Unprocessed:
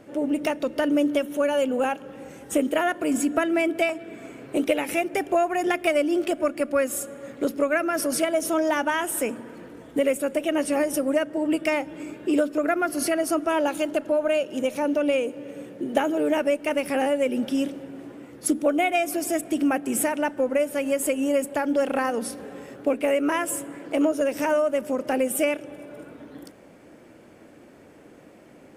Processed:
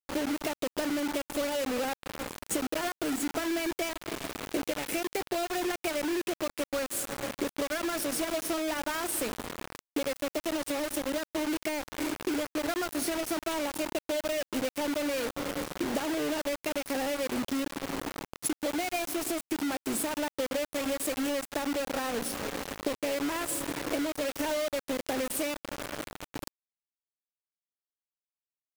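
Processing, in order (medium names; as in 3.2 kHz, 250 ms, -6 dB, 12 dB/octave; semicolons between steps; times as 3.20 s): 9.71–12.27 s: elliptic high-pass 270 Hz, stop band 40 dB; dynamic bell 350 Hz, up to +3 dB, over -40 dBFS, Q 3.2; compression 20:1, threshold -31 dBFS, peak gain reduction 17 dB; bit crusher 6-bit; trim +2.5 dB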